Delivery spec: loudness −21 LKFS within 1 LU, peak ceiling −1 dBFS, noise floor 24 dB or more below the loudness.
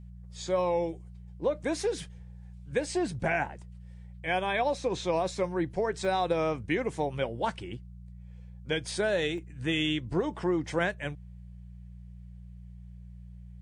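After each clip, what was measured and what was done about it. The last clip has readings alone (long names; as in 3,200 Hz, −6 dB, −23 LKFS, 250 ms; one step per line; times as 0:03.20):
number of dropouts 2; longest dropout 1.4 ms; mains hum 60 Hz; hum harmonics up to 180 Hz; level of the hum −44 dBFS; integrated loudness −30.5 LKFS; sample peak −13.0 dBFS; target loudness −21.0 LKFS
→ repair the gap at 0:06.05/0:09.38, 1.4 ms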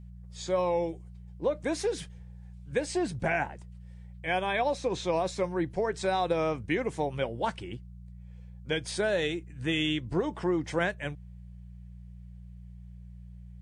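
number of dropouts 0; mains hum 60 Hz; hum harmonics up to 180 Hz; level of the hum −44 dBFS
→ hum removal 60 Hz, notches 3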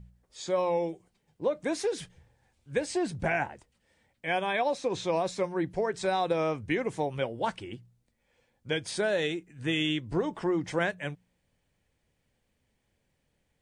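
mains hum none found; integrated loudness −30.5 LKFS; sample peak −13.0 dBFS; target loudness −21.0 LKFS
→ level +9.5 dB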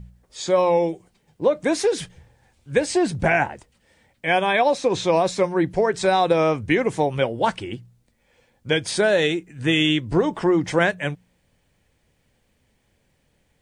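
integrated loudness −21.0 LKFS; sample peak −3.5 dBFS; background noise floor −67 dBFS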